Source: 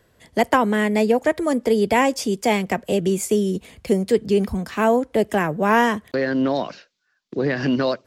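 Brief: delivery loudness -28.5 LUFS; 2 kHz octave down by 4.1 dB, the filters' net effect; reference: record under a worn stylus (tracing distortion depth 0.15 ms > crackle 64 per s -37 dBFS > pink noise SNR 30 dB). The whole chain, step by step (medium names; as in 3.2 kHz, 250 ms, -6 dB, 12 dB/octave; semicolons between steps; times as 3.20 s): peaking EQ 2 kHz -5 dB; tracing distortion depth 0.15 ms; crackle 64 per s -37 dBFS; pink noise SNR 30 dB; trim -7.5 dB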